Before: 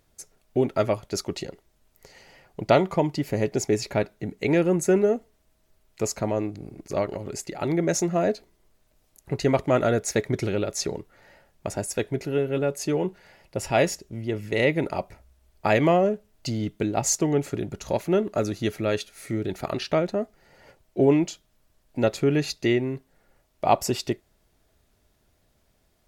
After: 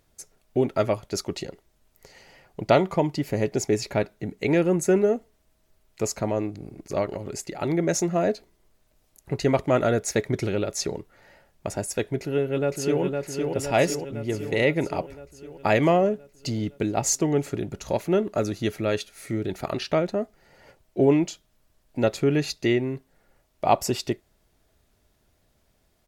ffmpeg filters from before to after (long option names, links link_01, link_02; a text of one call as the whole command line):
ffmpeg -i in.wav -filter_complex "[0:a]asplit=2[link_01][link_02];[link_02]afade=type=in:start_time=12.18:duration=0.01,afade=type=out:start_time=13.02:duration=0.01,aecho=0:1:510|1020|1530|2040|2550|3060|3570|4080|4590|5100:0.630957|0.410122|0.266579|0.173277|0.11263|0.0732094|0.0475861|0.030931|0.0201051|0.0130683[link_03];[link_01][link_03]amix=inputs=2:normalize=0" out.wav